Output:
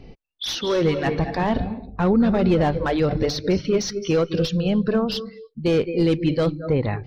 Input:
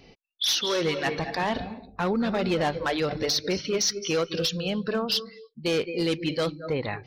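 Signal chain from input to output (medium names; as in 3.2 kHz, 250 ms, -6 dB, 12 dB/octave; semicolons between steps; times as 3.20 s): tilt EQ -3 dB/octave; trim +2.5 dB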